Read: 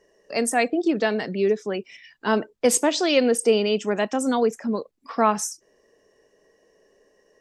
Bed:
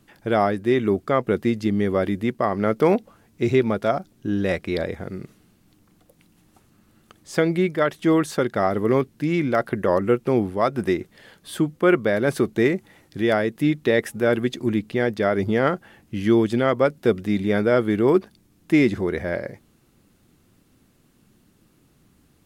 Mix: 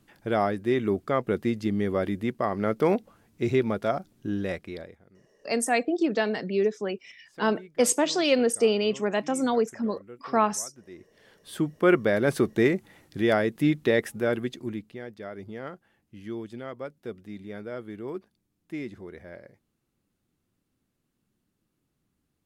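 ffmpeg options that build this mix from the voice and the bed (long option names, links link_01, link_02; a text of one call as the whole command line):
ffmpeg -i stem1.wav -i stem2.wav -filter_complex "[0:a]adelay=5150,volume=-3dB[link_01];[1:a]volume=18.5dB,afade=type=out:start_time=4.26:duration=0.73:silence=0.0891251,afade=type=in:start_time=10.9:duration=1.01:silence=0.0668344,afade=type=out:start_time=13.8:duration=1.21:silence=0.16788[link_02];[link_01][link_02]amix=inputs=2:normalize=0" out.wav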